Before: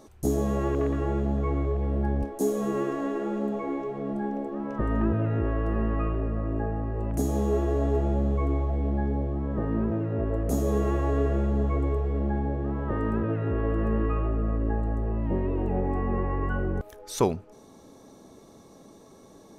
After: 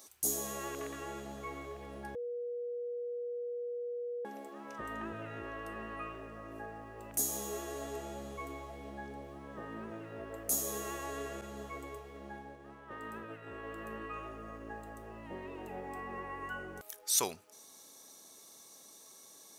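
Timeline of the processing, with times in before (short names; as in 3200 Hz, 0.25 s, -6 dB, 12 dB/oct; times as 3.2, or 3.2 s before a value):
2.15–4.25 bleep 482 Hz -22 dBFS
11.41–14.14 expander -24 dBFS
whole clip: HPF 110 Hz 6 dB/oct; pre-emphasis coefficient 0.97; gain +9 dB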